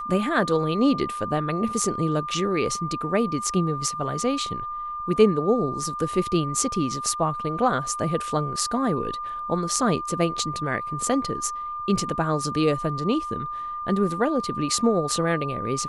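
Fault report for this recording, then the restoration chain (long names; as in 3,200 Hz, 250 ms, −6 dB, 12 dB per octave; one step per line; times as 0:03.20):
whistle 1,200 Hz −29 dBFS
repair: notch filter 1,200 Hz, Q 30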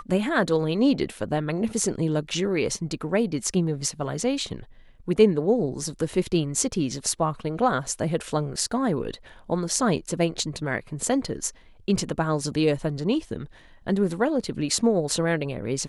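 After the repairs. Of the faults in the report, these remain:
none of them is left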